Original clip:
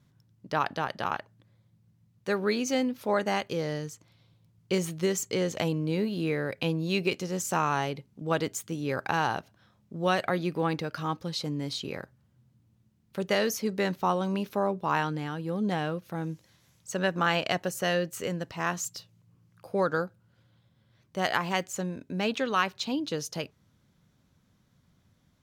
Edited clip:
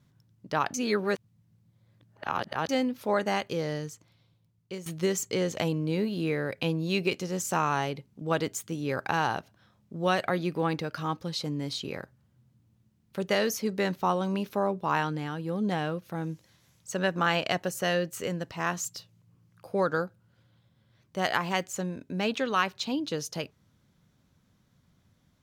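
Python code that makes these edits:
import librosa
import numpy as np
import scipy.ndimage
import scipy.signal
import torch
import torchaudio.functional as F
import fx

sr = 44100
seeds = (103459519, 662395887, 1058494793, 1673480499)

y = fx.edit(x, sr, fx.reverse_span(start_s=0.74, length_s=1.95),
    fx.fade_out_to(start_s=3.84, length_s=1.02, floor_db=-14.5), tone=tone)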